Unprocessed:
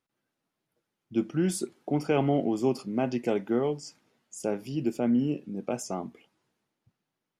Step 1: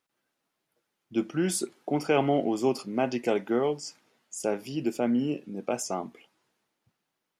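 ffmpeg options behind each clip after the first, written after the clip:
-af "lowshelf=f=280:g=-10.5,volume=1.68"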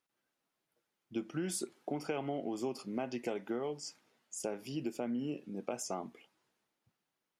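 -af "acompressor=threshold=0.0398:ratio=6,volume=0.562"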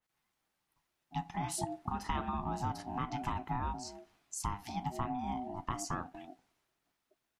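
-filter_complex "[0:a]acrossover=split=230[s0][s1];[s0]adelay=240[s2];[s2][s1]amix=inputs=2:normalize=0,aeval=exprs='val(0)*sin(2*PI*500*n/s)':c=same,adynamicequalizer=threshold=0.00126:dfrequency=2400:dqfactor=0.7:tfrequency=2400:tqfactor=0.7:attack=5:release=100:ratio=0.375:range=2.5:mode=cutabove:tftype=highshelf,volume=1.88"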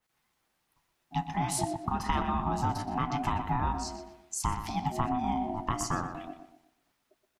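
-filter_complex "[0:a]asplit=2[s0][s1];[s1]adelay=122,lowpass=f=3300:p=1,volume=0.376,asplit=2[s2][s3];[s3]adelay=122,lowpass=f=3300:p=1,volume=0.39,asplit=2[s4][s5];[s5]adelay=122,lowpass=f=3300:p=1,volume=0.39,asplit=2[s6][s7];[s7]adelay=122,lowpass=f=3300:p=1,volume=0.39[s8];[s0][s2][s4][s6][s8]amix=inputs=5:normalize=0,volume=2"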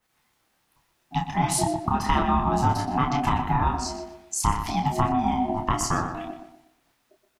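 -filter_complex "[0:a]asplit=2[s0][s1];[s1]adelay=28,volume=0.531[s2];[s0][s2]amix=inputs=2:normalize=0,volume=2"

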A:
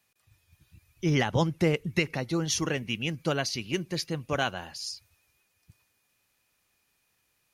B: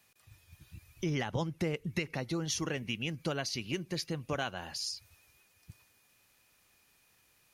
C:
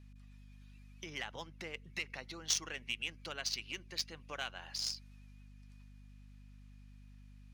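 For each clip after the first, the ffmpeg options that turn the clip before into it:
-af "acompressor=threshold=0.00794:ratio=2.5,volume=1.78"
-af "aderivative,adynamicsmooth=sensitivity=6.5:basefreq=2400,aeval=exprs='val(0)+0.000562*(sin(2*PI*50*n/s)+sin(2*PI*2*50*n/s)/2+sin(2*PI*3*50*n/s)/3+sin(2*PI*4*50*n/s)/4+sin(2*PI*5*50*n/s)/5)':c=same,volume=3.35"

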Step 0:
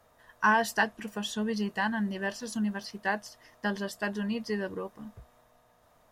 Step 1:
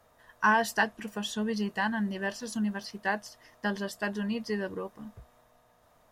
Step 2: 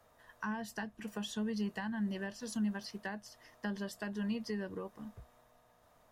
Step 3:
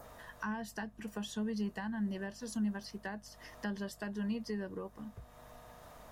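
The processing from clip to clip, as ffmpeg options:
-af anull
-filter_complex "[0:a]acrossover=split=240[s0][s1];[s1]acompressor=threshold=0.0158:ratio=10[s2];[s0][s2]amix=inputs=2:normalize=0,volume=0.708"
-af "adynamicequalizer=threshold=0.00126:dfrequency=2900:dqfactor=0.86:tfrequency=2900:tqfactor=0.86:attack=5:release=100:ratio=0.375:range=2:mode=cutabove:tftype=bell,acompressor=mode=upward:threshold=0.00794:ratio=2.5,aeval=exprs='val(0)+0.000891*(sin(2*PI*50*n/s)+sin(2*PI*2*50*n/s)/2+sin(2*PI*3*50*n/s)/3+sin(2*PI*4*50*n/s)/4+sin(2*PI*5*50*n/s)/5)':c=same"

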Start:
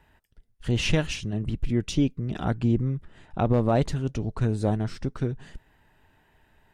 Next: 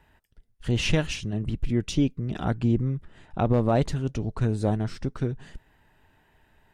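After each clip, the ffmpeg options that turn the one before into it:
-af anull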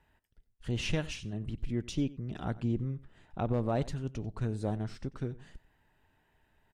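-af "aecho=1:1:92:0.106,volume=0.376"

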